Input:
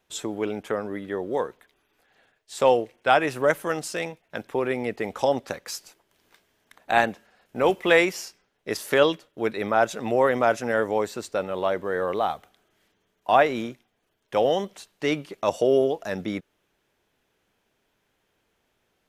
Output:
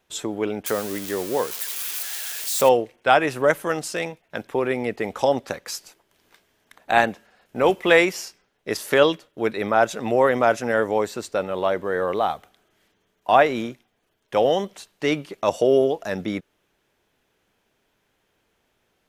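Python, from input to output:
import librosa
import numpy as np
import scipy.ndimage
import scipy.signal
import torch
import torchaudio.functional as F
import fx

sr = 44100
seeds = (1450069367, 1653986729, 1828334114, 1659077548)

y = fx.crossing_spikes(x, sr, level_db=-22.5, at=(0.66, 2.69))
y = y * librosa.db_to_amplitude(2.5)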